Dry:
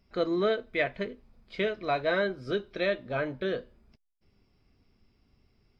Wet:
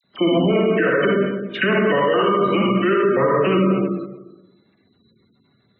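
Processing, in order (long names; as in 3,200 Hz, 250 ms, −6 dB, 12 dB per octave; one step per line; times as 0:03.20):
gain on one half-wave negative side −3 dB
output level in coarse steps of 16 dB
formants moved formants −5 semitones
convolution reverb RT60 1.1 s, pre-delay 43 ms, DRR −3 dB
gate on every frequency bin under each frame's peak −30 dB strong
high-pass filter 130 Hz 24 dB per octave
mains-hum notches 60/120/180 Hz
all-pass dispersion lows, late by 42 ms, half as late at 2,000 Hz
boost into a limiter +28.5 dB
level −8.5 dB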